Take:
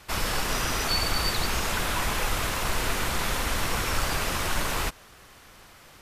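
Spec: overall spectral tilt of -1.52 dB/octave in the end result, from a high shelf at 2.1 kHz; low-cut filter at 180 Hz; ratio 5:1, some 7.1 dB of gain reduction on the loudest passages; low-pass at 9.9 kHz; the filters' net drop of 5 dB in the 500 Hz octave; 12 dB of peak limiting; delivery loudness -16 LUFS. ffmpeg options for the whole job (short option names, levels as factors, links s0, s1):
-af "highpass=180,lowpass=9900,equalizer=f=500:t=o:g=-7,highshelf=f=2100:g=7,acompressor=threshold=0.0447:ratio=5,volume=10,alimiter=limit=0.355:level=0:latency=1"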